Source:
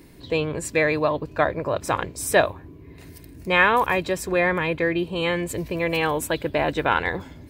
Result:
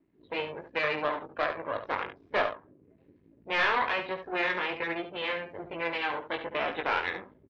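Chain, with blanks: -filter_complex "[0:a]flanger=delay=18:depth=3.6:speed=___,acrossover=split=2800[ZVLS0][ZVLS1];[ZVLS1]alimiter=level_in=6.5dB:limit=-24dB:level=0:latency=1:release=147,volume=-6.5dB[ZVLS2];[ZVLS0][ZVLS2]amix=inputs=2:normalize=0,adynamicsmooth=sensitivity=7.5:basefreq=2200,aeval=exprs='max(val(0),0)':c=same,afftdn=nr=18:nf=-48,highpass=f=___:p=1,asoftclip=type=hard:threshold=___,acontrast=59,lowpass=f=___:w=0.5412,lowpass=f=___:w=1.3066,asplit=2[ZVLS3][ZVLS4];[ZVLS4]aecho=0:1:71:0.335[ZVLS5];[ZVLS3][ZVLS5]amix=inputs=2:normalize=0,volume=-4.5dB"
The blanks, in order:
1.2, 630, -20.5dB, 3900, 3900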